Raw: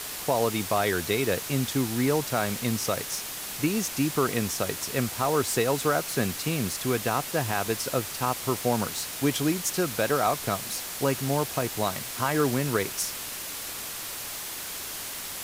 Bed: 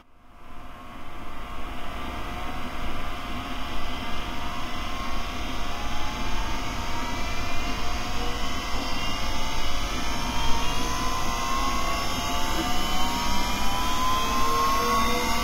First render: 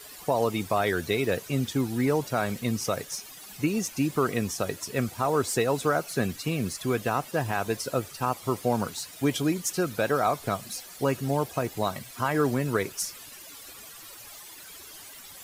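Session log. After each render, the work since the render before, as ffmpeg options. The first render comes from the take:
ffmpeg -i in.wav -af "afftdn=noise_reduction=14:noise_floor=-36" out.wav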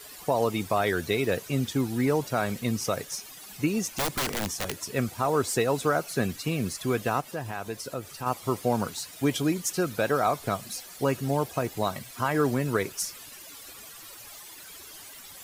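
ffmpeg -i in.wav -filter_complex "[0:a]asettb=1/sr,asplit=3[link_01][link_02][link_03];[link_01]atrim=end=3.874[link_04];[link_02]atrim=start=3.87:end=4.78,asetpts=PTS-STARTPTS,afade=type=in:duration=0.004:curve=qsin,afade=type=out:start_time=0.906:duration=0.004:curve=qsin,aeval=exprs='(mod(13.3*val(0)+1,2)-1)/13.3':channel_layout=same[link_05];[link_03]atrim=start=4.776[link_06];[link_04][link_05]acrossfade=duration=0.004:curve1=hsin:curve2=qsin[link_07];[link_07][link_06]acrossfade=duration=0.004:curve1=qsin:curve2=hsin,asplit=3[link_08][link_09][link_10];[link_08]afade=type=out:start_time=7.2:duration=0.02[link_11];[link_09]acompressor=threshold=-40dB:ratio=1.5:attack=3.2:release=140:knee=1:detection=peak,afade=type=in:start_time=7.2:duration=0.02,afade=type=out:start_time=8.25:duration=0.02[link_12];[link_10]afade=type=in:start_time=8.25:duration=0.02[link_13];[link_11][link_12][link_13]amix=inputs=3:normalize=0" out.wav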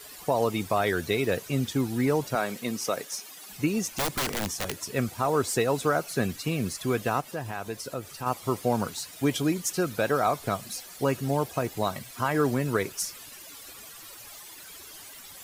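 ffmpeg -i in.wav -filter_complex "[0:a]asettb=1/sr,asplit=3[link_01][link_02][link_03];[link_01]atrim=end=2.354[link_04];[link_02]atrim=start=2.35:end=3.49,asetpts=PTS-STARTPTS,afade=type=in:duration=0.004:curve=qsin,afade=type=out:start_time=1.136:duration=0.004:curve=qsin,highpass=230[link_05];[link_03]atrim=start=3.486[link_06];[link_04][link_05]acrossfade=duration=0.004:curve1=hsin:curve2=qsin[link_07];[link_07][link_06]acrossfade=duration=0.004:curve1=qsin:curve2=hsin" out.wav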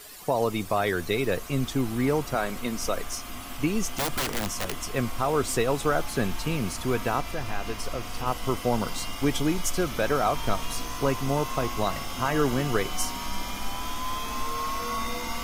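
ffmpeg -i in.wav -i bed.wav -filter_complex "[1:a]volume=-7.5dB[link_01];[0:a][link_01]amix=inputs=2:normalize=0" out.wav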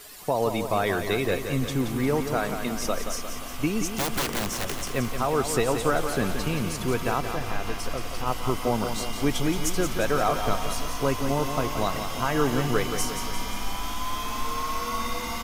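ffmpeg -i in.wav -af "aecho=1:1:176|352|528|704|880|1056|1232:0.398|0.231|0.134|0.0777|0.0451|0.0261|0.0152" out.wav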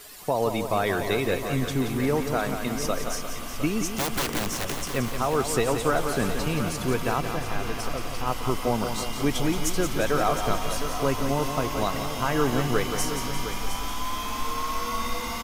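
ffmpeg -i in.wav -af "aecho=1:1:711:0.266" out.wav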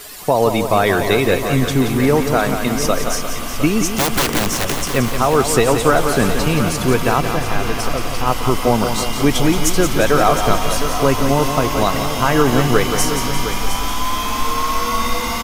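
ffmpeg -i in.wav -af "volume=10dB,alimiter=limit=-1dB:level=0:latency=1" out.wav

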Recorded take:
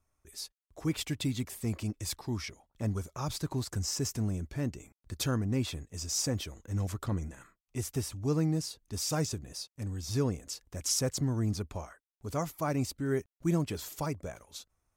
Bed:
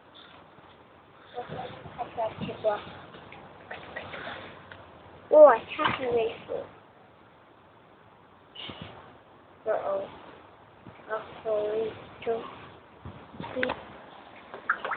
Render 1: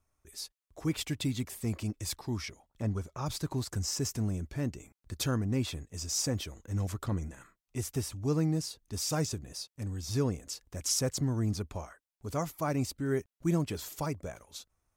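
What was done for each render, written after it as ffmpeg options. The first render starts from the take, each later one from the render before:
ffmpeg -i in.wav -filter_complex "[0:a]asettb=1/sr,asplit=3[link_01][link_02][link_03];[link_01]atrim=end=2.824[link_04];[link_02]atrim=start=2.82:end=3.26,asetpts=PTS-STARTPTS,afade=type=in:duration=0.004:curve=qsin,afade=type=out:start_time=0.436:duration=0.004:curve=qsin,lowpass=frequency=3800:poles=1[link_05];[link_03]atrim=start=3.256[link_06];[link_04][link_05]acrossfade=duration=0.004:curve1=hsin:curve2=qsin[link_07];[link_07][link_06]acrossfade=duration=0.004:curve1=qsin:curve2=hsin" out.wav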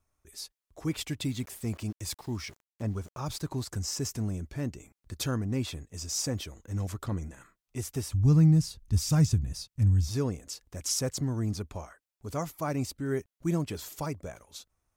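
ffmpeg -i in.wav -filter_complex "[0:a]asettb=1/sr,asplit=3[link_01][link_02][link_03];[link_01]atrim=end=1.244[link_04];[link_02]atrim=start=1.24:end=3.41,asetpts=PTS-STARTPTS,afade=type=in:duration=0.004:curve=qsin,afade=type=out:start_time=2.166:duration=0.004:curve=qsin,aeval=exprs='val(0)*gte(abs(val(0)),0.00282)':channel_layout=same[link_05];[link_03]atrim=start=3.406[link_06];[link_04][link_05]acrossfade=duration=0.004:curve1=hsin:curve2=qsin[link_07];[link_07][link_06]acrossfade=duration=0.004:curve1=qsin:curve2=hsin,asplit=3[link_08][link_09][link_10];[link_08]afade=type=out:start_time=8.13:duration=0.02[link_11];[link_09]asubboost=boost=8:cutoff=150,afade=type=in:start_time=8.13:duration=0.02,afade=type=out:start_time=10.07:duration=0.02[link_12];[link_10]afade=type=in:start_time=10.07:duration=0.02[link_13];[link_11][link_12][link_13]amix=inputs=3:normalize=0" out.wav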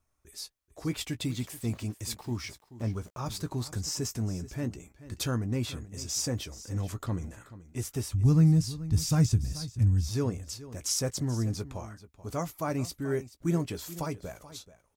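ffmpeg -i in.wav -filter_complex "[0:a]asplit=2[link_01][link_02];[link_02]adelay=17,volume=-12dB[link_03];[link_01][link_03]amix=inputs=2:normalize=0,aecho=1:1:432:0.158" out.wav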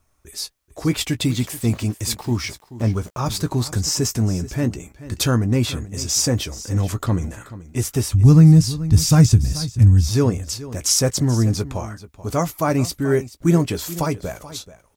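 ffmpeg -i in.wav -af "volume=12dB,alimiter=limit=-3dB:level=0:latency=1" out.wav

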